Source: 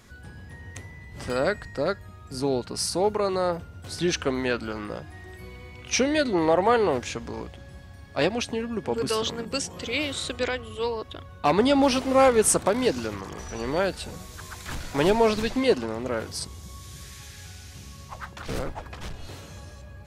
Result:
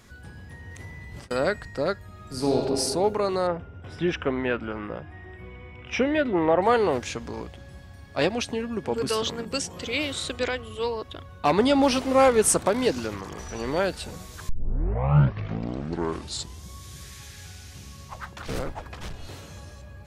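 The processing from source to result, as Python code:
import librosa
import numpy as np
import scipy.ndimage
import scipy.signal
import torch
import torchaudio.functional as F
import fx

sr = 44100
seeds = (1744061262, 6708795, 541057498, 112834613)

y = fx.over_compress(x, sr, threshold_db=-40.0, ratio=-0.5, at=(0.71, 1.31))
y = fx.reverb_throw(y, sr, start_s=2.08, length_s=0.49, rt60_s=2.0, drr_db=-1.5)
y = fx.savgol(y, sr, points=25, at=(3.47, 6.62))
y = fx.edit(y, sr, fx.tape_start(start_s=14.49, length_s=2.2), tone=tone)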